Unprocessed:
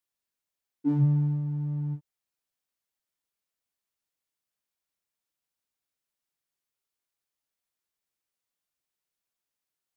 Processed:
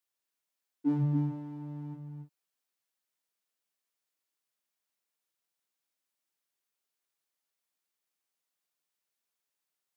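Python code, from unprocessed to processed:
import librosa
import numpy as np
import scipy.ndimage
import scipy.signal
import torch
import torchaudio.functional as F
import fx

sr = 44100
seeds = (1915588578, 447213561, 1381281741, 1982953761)

y = scipy.signal.sosfilt(scipy.signal.butter(2, 150.0, 'highpass', fs=sr, output='sos'), x)
y = fx.low_shelf(y, sr, hz=260.0, db=-4.5)
y = y + 10.0 ** (-6.5 / 20.0) * np.pad(y, (int(283 * sr / 1000.0), 0))[:len(y)]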